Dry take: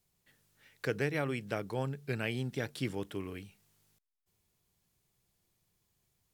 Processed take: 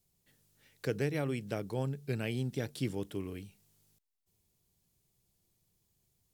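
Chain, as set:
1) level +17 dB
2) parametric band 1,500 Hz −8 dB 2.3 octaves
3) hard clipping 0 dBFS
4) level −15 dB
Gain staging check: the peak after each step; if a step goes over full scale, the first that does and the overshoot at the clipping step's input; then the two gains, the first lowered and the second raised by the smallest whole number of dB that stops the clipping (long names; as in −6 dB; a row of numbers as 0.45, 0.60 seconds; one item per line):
−0.5, −4.0, −4.0, −19.0 dBFS
no step passes full scale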